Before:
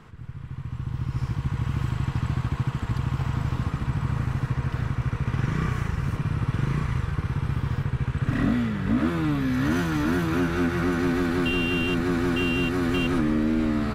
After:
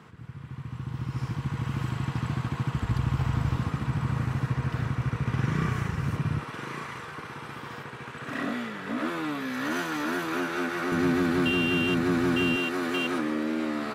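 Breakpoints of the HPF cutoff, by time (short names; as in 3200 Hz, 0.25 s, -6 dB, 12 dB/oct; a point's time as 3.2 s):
130 Hz
from 2.73 s 45 Hz
from 3.57 s 100 Hz
from 6.41 s 400 Hz
from 10.92 s 120 Hz
from 12.56 s 350 Hz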